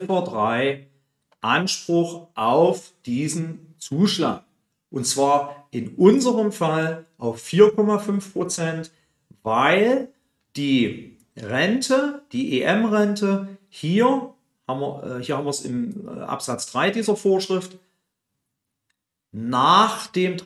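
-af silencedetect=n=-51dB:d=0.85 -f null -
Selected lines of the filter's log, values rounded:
silence_start: 17.79
silence_end: 18.90 | silence_duration: 1.11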